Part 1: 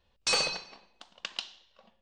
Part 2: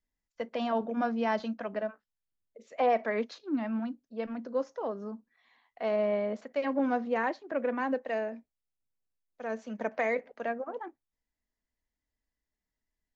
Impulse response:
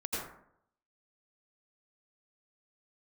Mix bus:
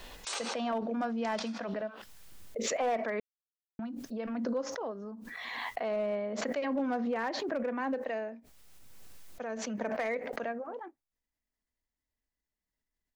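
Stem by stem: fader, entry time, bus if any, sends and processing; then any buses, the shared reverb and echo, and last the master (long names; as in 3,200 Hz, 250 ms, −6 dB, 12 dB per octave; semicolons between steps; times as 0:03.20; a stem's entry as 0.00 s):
0:00.76 −18 dB → 0:01.47 −6 dB, 0.00 s, send −7.5 dB, gate on every frequency bin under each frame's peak −10 dB weak; high-pass filter 370 Hz 24 dB per octave
−4.0 dB, 0.00 s, muted 0:03.20–0:03.79, no send, hard clipping −21.5 dBFS, distortion −23 dB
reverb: on, RT60 0.70 s, pre-delay 78 ms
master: background raised ahead of every attack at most 22 dB per second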